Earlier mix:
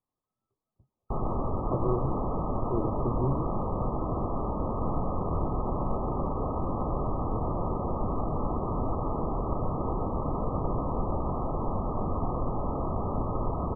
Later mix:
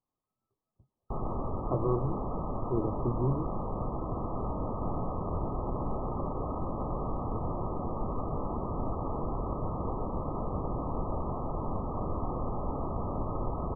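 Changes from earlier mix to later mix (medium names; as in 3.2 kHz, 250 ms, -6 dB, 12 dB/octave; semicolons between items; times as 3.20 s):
first sound -4.0 dB; second sound: entry +2.50 s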